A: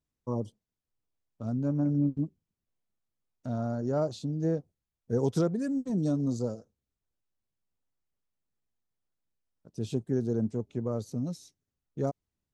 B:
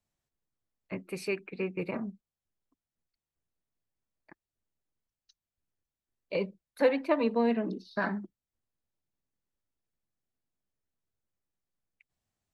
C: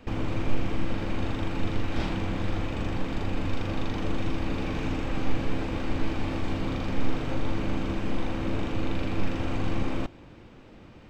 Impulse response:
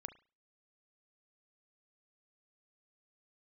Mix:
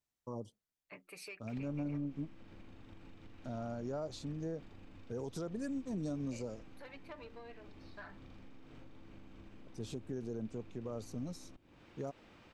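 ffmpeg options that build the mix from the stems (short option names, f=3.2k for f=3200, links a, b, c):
-filter_complex "[0:a]volume=-4dB[a];[1:a]aecho=1:1:6.8:0.53,asoftclip=type=tanh:threshold=-19.5dB,volume=-6.5dB[b];[2:a]acrossover=split=110|320[c][d][e];[c]acompressor=threshold=-28dB:ratio=4[f];[d]acompressor=threshold=-39dB:ratio=4[g];[e]acompressor=threshold=-60dB:ratio=4[h];[f][g][h]amix=inputs=3:normalize=0,adelay=1500,volume=2.5dB[i];[b][i]amix=inputs=2:normalize=0,lowshelf=f=410:g=-11.5,acompressor=threshold=-44dB:ratio=6,volume=0dB[j];[a][j]amix=inputs=2:normalize=0,lowshelf=f=370:g=-7,alimiter=level_in=7.5dB:limit=-24dB:level=0:latency=1:release=96,volume=-7.5dB"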